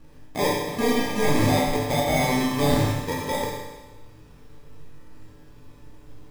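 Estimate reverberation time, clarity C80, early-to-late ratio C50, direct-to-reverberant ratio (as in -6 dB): 1.2 s, 2.5 dB, 0.0 dB, -5.0 dB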